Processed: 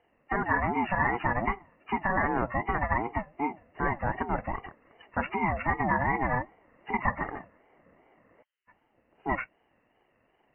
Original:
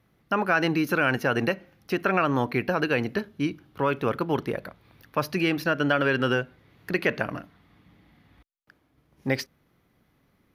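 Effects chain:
hearing-aid frequency compression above 1,300 Hz 4 to 1
ring modulator whose carrier an LFO sweeps 480 Hz, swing 25%, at 2.6 Hz
level −1 dB

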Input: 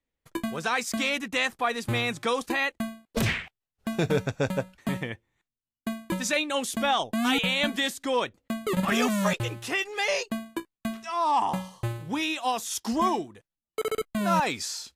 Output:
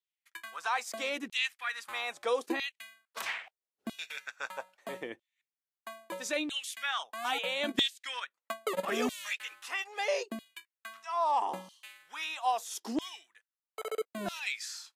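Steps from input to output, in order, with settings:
0:07.68–0:08.86: transient designer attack +8 dB, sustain −8 dB
auto-filter high-pass saw down 0.77 Hz 280–3,500 Hz
level −8.5 dB

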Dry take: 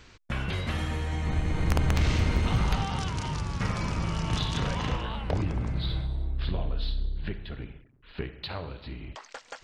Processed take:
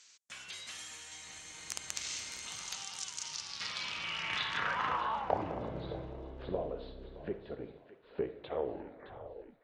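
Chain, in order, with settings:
turntable brake at the end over 1.31 s
feedback echo with a high-pass in the loop 617 ms, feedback 54%, high-pass 920 Hz, level −11 dB
band-pass filter sweep 7,000 Hz → 500 Hz, 0:03.16–0:05.80
level +7 dB

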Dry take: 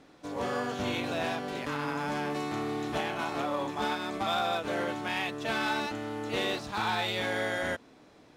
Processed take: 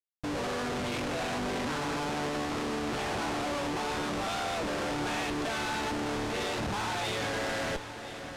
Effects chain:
comparator with hysteresis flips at −41 dBFS
low-pass filter 7,800 Hz 12 dB per octave
feedback echo with a long and a short gap by turns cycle 1,017 ms, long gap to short 1.5 to 1, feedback 65%, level −13 dB

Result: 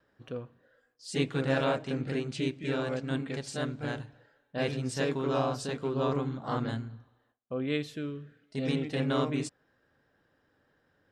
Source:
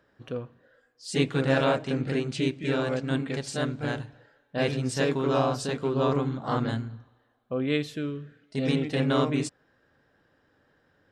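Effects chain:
noise gate with hold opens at −58 dBFS
level −4.5 dB

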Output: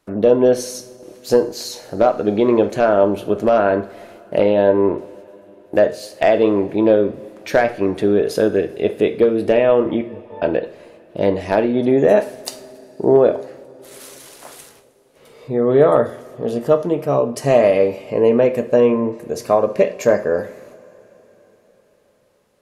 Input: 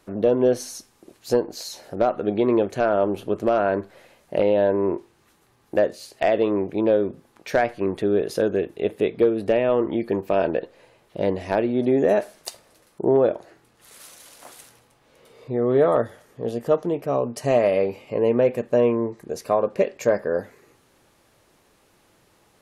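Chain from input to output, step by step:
0:10.01–0:10.42: resonances in every octave A, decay 0.32 s
noise gate −55 dBFS, range −12 dB
coupled-rooms reverb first 0.43 s, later 4.6 s, from −22 dB, DRR 9 dB
level +5 dB

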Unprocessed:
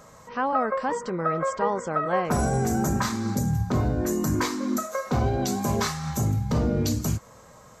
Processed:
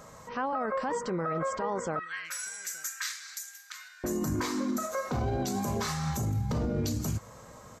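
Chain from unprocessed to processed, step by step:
0:01.99–0:04.04: Butterworth high-pass 1,600 Hz 36 dB per octave
brickwall limiter −23 dBFS, peak gain reduction 10.5 dB
slap from a distant wall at 150 metres, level −29 dB

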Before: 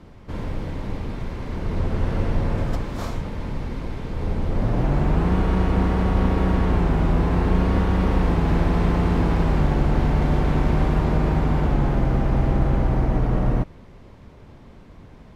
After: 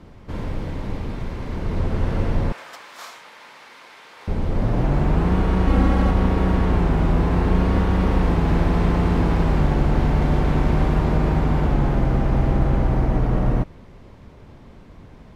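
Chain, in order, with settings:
0:02.52–0:04.28: high-pass filter 1,200 Hz 12 dB per octave
0:05.67–0:06.11: comb filter 3.7 ms, depth 80%
level +1 dB

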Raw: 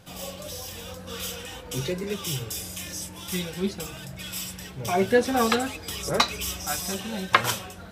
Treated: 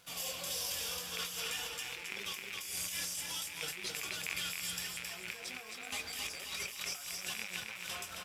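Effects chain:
loose part that buzzes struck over −34 dBFS, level −15 dBFS
tilt shelving filter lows −8.5 dB, about 730 Hz
compressor whose output falls as the input rises −31 dBFS, ratio −1
dead-zone distortion −50 dBFS
flanger 0.59 Hz, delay 5.3 ms, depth 7.2 ms, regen −55%
wrong playback speed 25 fps video run at 24 fps
on a send: repeating echo 267 ms, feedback 38%, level −4.5 dB
on the sum: level −8 dB

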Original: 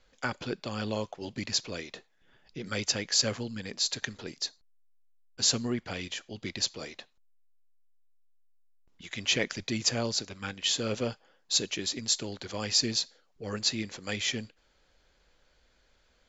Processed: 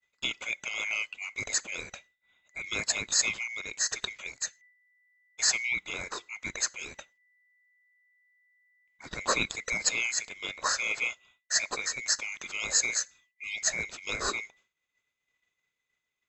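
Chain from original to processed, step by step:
neighbouring bands swapped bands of 2,000 Hz
downward expander −54 dBFS
0:12.97–0:13.67: parametric band 700 Hz −4.5 dB 2.9 octaves

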